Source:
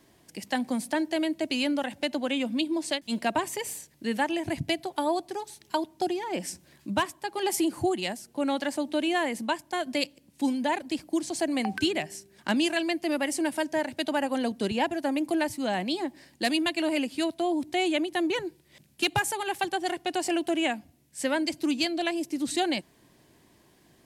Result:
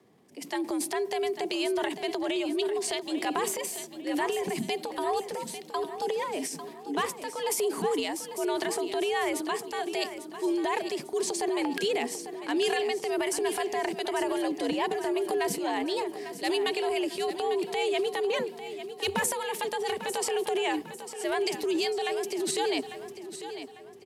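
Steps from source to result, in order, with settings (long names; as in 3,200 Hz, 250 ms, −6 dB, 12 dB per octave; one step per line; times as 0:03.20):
frequency shifter +86 Hz
low-shelf EQ 170 Hz +10 dB
transient designer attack −3 dB, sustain +9 dB
repeating echo 848 ms, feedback 44%, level −11 dB
one half of a high-frequency compander decoder only
level −3 dB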